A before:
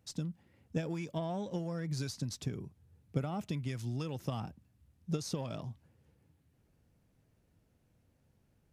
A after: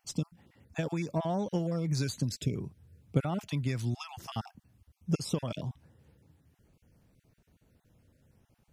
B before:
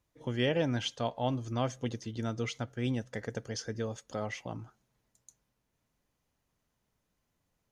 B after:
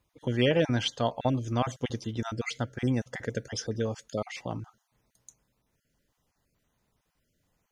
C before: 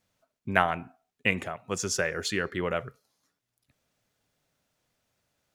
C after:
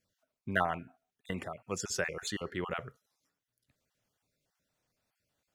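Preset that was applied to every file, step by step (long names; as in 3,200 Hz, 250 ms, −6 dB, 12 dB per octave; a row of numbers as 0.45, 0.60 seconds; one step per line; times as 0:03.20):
time-frequency cells dropped at random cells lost 23%
normalise the peak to −12 dBFS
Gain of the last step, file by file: +6.0, +5.5, −4.5 decibels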